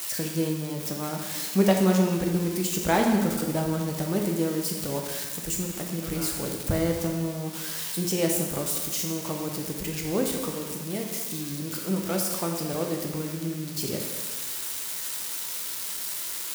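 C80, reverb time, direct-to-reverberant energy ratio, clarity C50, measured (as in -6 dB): 5.0 dB, 1.4 s, 1.0 dB, 3.5 dB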